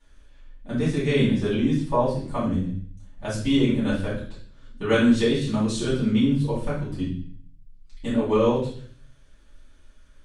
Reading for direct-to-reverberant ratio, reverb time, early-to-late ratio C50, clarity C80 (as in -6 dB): -11.0 dB, 0.50 s, 3.0 dB, 8.5 dB